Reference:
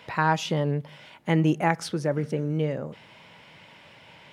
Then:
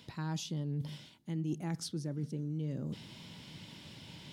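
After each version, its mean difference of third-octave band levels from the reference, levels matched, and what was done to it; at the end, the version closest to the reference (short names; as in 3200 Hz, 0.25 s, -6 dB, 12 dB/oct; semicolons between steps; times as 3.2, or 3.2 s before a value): 8.0 dB: band shelf 1100 Hz -14.5 dB 2.9 oct; reverse; compressor 4:1, threshold -44 dBFS, peak gain reduction 20.5 dB; reverse; gain +6.5 dB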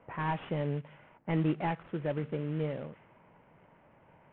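5.0 dB: CVSD 16 kbps; low-pass opened by the level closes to 930 Hz, open at -20 dBFS; gain -6.5 dB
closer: second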